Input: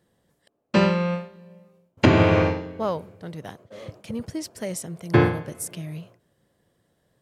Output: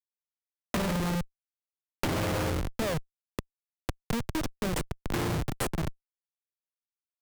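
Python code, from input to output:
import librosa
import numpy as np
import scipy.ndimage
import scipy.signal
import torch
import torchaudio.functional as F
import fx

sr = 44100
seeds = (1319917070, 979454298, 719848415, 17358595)

y = fx.schmitt(x, sr, flips_db=-28.0)
y = fx.band_squash(y, sr, depth_pct=70)
y = y * librosa.db_to_amplitude(-3.5)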